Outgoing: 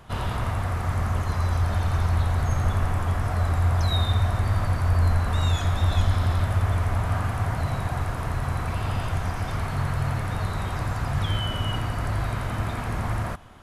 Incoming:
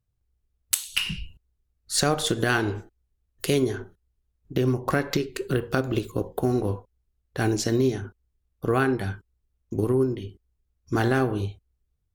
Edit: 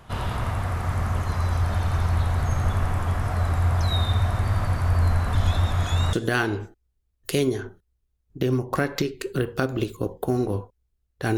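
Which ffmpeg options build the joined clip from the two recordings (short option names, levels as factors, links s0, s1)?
-filter_complex "[0:a]apad=whole_dur=11.37,atrim=end=11.37,asplit=2[s0][s1];[s0]atrim=end=5.352[s2];[s1]atrim=start=5.348:end=6.132,asetpts=PTS-STARTPTS,areverse[s3];[1:a]atrim=start=2.278:end=7.52[s4];[s2][s3]acrossfade=d=0.004:c1=hsin:c2=hsin[s5];[s5][s4]acrossfade=d=0.004:c1=hsin:c2=hsin"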